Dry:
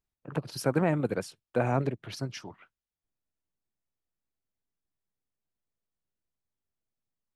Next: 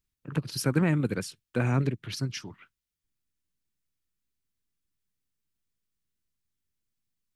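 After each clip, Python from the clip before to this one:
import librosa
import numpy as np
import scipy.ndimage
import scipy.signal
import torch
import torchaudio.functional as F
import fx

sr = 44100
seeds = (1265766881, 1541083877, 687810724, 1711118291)

y = fx.peak_eq(x, sr, hz=680.0, db=-14.0, octaves=1.4)
y = y * librosa.db_to_amplitude(5.5)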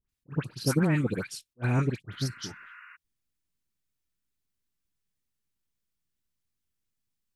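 y = fx.dispersion(x, sr, late='highs', ms=92.0, hz=1600.0)
y = fx.spec_repair(y, sr, seeds[0], start_s=2.14, length_s=0.79, low_hz=940.0, high_hz=2900.0, source='before')
y = fx.attack_slew(y, sr, db_per_s=530.0)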